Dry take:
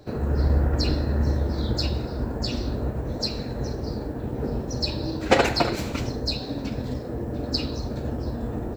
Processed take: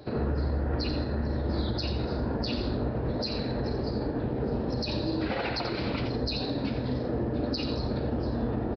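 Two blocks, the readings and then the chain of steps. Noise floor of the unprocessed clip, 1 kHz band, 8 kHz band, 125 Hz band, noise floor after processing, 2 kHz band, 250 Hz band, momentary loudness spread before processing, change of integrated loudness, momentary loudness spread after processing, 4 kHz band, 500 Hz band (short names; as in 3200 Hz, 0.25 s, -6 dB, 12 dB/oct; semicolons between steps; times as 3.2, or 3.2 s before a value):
-33 dBFS, -5.5 dB, under -15 dB, -4.5 dB, -33 dBFS, -6.5 dB, -1.0 dB, 8 LU, -4.0 dB, 1 LU, -5.5 dB, -3.0 dB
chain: low shelf 63 Hz -9 dB; compressor 4:1, threshold -26 dBFS, peak gain reduction 12 dB; limiter -23.5 dBFS, peak gain reduction 10 dB; on a send: echo 87 ms -9.5 dB; on the sum: downsampling 11025 Hz; gain +2.5 dB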